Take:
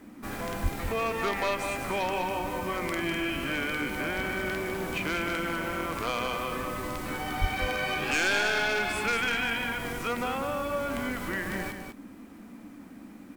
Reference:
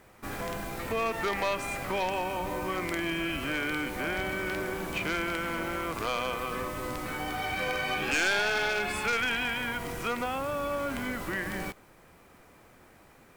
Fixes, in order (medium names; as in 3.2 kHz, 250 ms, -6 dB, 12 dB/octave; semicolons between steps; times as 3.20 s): 0.62–0.74 s: high-pass 140 Hz 24 dB/octave; 7.40–7.52 s: high-pass 140 Hz 24 dB/octave; noise print and reduce 11 dB; inverse comb 201 ms -6.5 dB